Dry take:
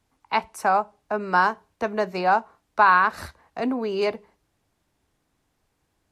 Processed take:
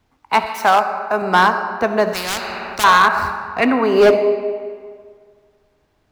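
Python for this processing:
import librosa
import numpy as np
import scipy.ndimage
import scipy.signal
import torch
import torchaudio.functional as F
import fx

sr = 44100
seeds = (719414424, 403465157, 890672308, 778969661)

y = scipy.ndimage.median_filter(x, 5, mode='constant')
y = fx.peak_eq(y, sr, hz=fx.line((3.58, 2600.0), (4.13, 420.0)), db=14.0, octaves=0.96, at=(3.58, 4.13), fade=0.02)
y = fx.rev_freeverb(y, sr, rt60_s=1.9, hf_ratio=0.7, predelay_ms=20, drr_db=8.0)
y = np.clip(y, -10.0 ** (-14.5 / 20.0), 10.0 ** (-14.5 / 20.0))
y = fx.tilt_eq(y, sr, slope=2.0, at=(0.46, 1.22))
y = fx.spectral_comp(y, sr, ratio=4.0, at=(2.13, 2.84))
y = y * librosa.db_to_amplitude(8.0)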